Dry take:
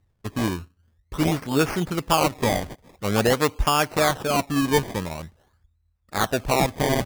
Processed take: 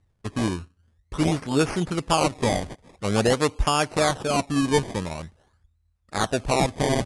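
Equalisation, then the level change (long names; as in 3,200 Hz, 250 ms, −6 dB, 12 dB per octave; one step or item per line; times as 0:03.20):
Butterworth low-pass 11,000 Hz 96 dB per octave
dynamic equaliser 1,600 Hz, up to −3 dB, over −33 dBFS, Q 0.81
0.0 dB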